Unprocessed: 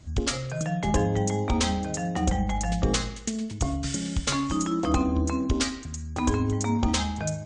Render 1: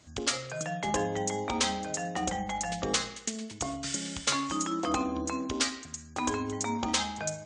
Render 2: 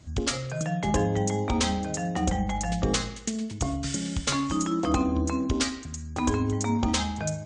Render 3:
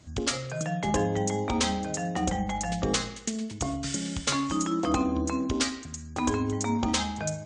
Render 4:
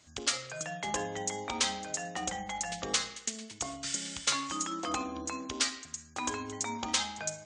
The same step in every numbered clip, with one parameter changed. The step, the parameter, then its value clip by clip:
high-pass filter, corner frequency: 540, 65, 170, 1,400 Hertz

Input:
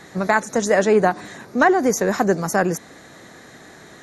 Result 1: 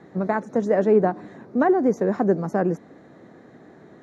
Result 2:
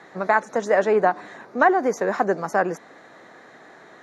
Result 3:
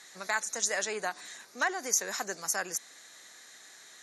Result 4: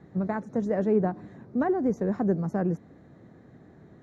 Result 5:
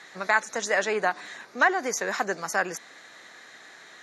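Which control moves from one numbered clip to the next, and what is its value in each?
resonant band-pass, frequency: 270, 890, 7,400, 100, 2,700 Hertz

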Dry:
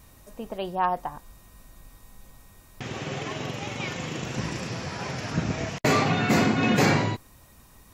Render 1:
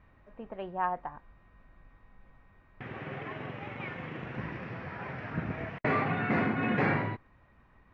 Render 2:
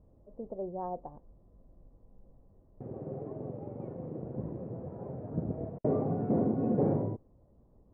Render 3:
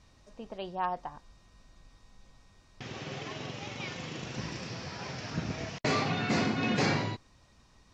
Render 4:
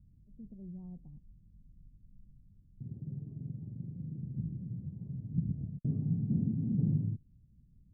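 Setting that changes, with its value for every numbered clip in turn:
transistor ladder low-pass, frequency: 2,400, 660, 6,400, 210 Hertz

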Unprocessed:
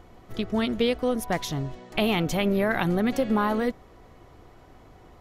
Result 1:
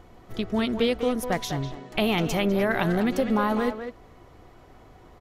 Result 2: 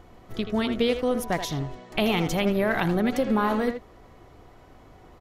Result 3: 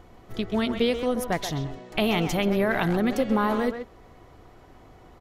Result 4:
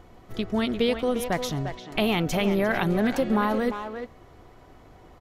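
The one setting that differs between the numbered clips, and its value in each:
far-end echo of a speakerphone, delay time: 200, 80, 130, 350 milliseconds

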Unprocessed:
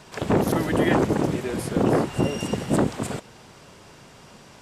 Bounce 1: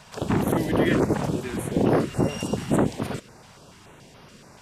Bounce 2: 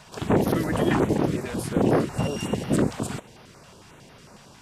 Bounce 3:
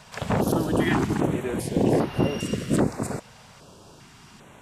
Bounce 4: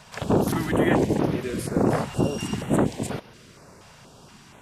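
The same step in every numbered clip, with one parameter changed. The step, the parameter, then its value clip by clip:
notch on a step sequencer, speed: 7, 11, 2.5, 4.2 Hertz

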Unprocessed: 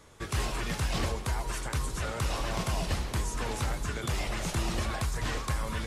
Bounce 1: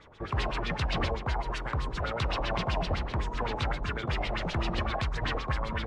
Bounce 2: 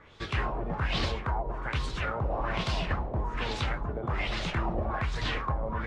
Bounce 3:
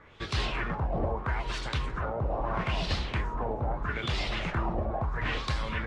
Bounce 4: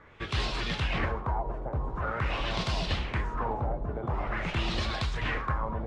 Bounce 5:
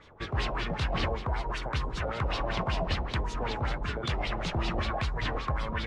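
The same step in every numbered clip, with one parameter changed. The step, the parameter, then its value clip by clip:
auto-filter low-pass, speed: 7.8, 1.2, 0.77, 0.46, 5.2 Hertz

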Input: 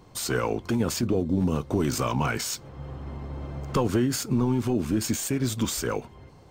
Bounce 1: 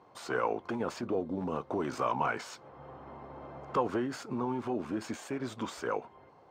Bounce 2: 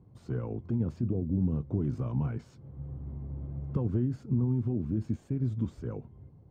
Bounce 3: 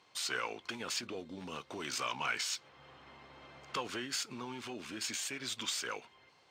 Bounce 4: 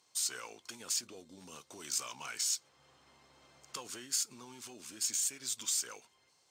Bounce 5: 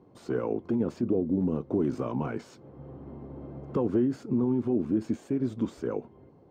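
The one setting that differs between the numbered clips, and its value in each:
resonant band-pass, frequency: 870, 110, 2,900, 7,300, 320 Hertz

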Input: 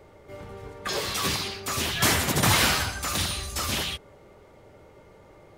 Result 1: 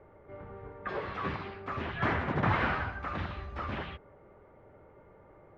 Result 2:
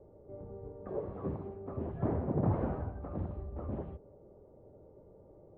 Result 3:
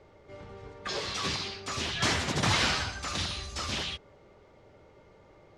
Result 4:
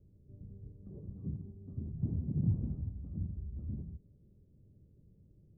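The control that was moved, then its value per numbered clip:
transistor ladder low-pass, frequency: 2,200, 760, 7,400, 250 Hertz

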